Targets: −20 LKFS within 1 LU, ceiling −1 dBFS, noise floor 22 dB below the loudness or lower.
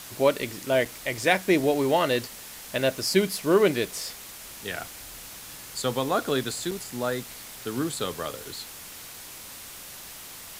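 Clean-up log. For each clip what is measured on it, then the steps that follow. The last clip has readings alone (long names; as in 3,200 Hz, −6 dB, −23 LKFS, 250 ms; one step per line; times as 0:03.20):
number of dropouts 2; longest dropout 4.6 ms; background noise floor −43 dBFS; target noise floor −49 dBFS; integrated loudness −26.5 LKFS; sample peak −6.0 dBFS; target loudness −20.0 LKFS
→ repair the gap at 0:00.85/0:06.71, 4.6 ms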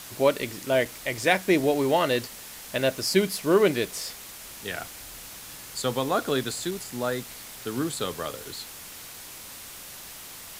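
number of dropouts 0; background noise floor −43 dBFS; target noise floor −49 dBFS
→ broadband denoise 6 dB, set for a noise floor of −43 dBFS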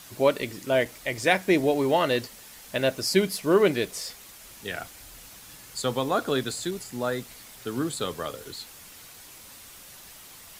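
background noise floor −47 dBFS; target noise floor −49 dBFS
→ broadband denoise 6 dB, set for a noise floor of −47 dBFS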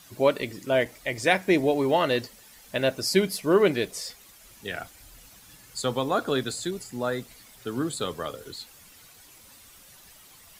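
background noise floor −52 dBFS; integrated loudness −26.5 LKFS; sample peak −6.0 dBFS; target loudness −20.0 LKFS
→ level +6.5 dB
brickwall limiter −1 dBFS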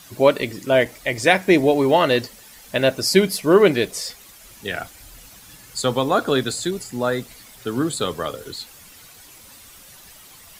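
integrated loudness −20.0 LKFS; sample peak −1.0 dBFS; background noise floor −46 dBFS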